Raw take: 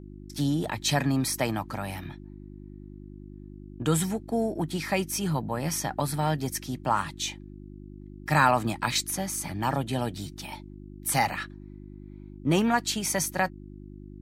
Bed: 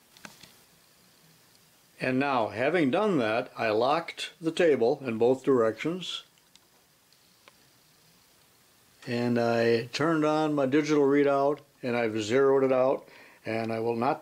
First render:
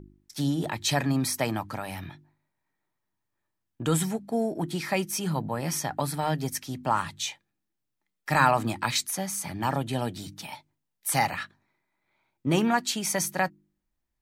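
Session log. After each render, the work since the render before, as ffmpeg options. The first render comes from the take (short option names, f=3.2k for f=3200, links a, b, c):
-af "bandreject=f=50:t=h:w=4,bandreject=f=100:t=h:w=4,bandreject=f=150:t=h:w=4,bandreject=f=200:t=h:w=4,bandreject=f=250:t=h:w=4,bandreject=f=300:t=h:w=4,bandreject=f=350:t=h:w=4"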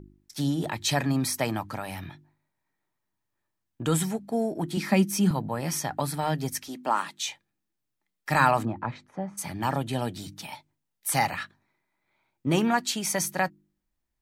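-filter_complex "[0:a]asettb=1/sr,asplit=3[a][b][c];[a]atrim=end=4.774[d];[b]atrim=start=4.77:end=5.31,asetpts=PTS-STARTPTS,afade=t=in:d=0.004:c=qsin,afade=t=out:st=0.536:d=0.004:c=qsin,highpass=f=210:t=q:w=4.9[e];[c]atrim=start=5.306[f];[d][e]acrossfade=d=0.004:c1=hsin:c2=qsin[g];[g][f]acrossfade=d=0.004:c1=qsin:c2=hsin,asettb=1/sr,asplit=3[h][i][j];[h]atrim=end=6.684[k];[i]atrim=start=6.68:end=7.29,asetpts=PTS-STARTPTS,afade=t=in:d=0.004:c=qsin,afade=t=out:st=0.606:d=0.004:c=qsin,highpass=f=230:w=0.5412,highpass=f=230:w=1.3066[l];[j]atrim=start=7.286[m];[k][l]acrossfade=d=0.004:c1=hsin:c2=qsin[n];[n][m]acrossfade=d=0.004:c1=qsin:c2=hsin,asplit=3[o][p][q];[o]afade=t=out:st=8.64:d=0.02[r];[p]lowpass=1k,afade=t=in:st=8.64:d=0.02,afade=t=out:st=9.37:d=0.02[s];[q]afade=t=in:st=9.37:d=0.02[t];[r][s][t]amix=inputs=3:normalize=0"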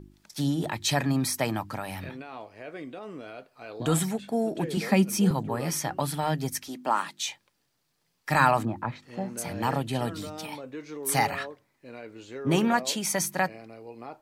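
-filter_complex "[1:a]volume=-15dB[a];[0:a][a]amix=inputs=2:normalize=0"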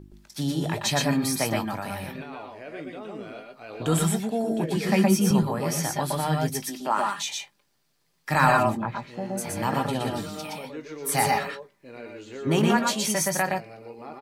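-filter_complex "[0:a]asplit=2[a][b];[b]adelay=19,volume=-11dB[c];[a][c]amix=inputs=2:normalize=0,aecho=1:1:117|122:0.562|0.596"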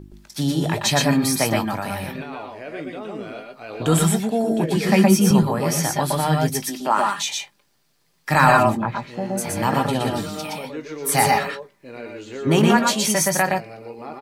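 -af "volume=5.5dB,alimiter=limit=-2dB:level=0:latency=1"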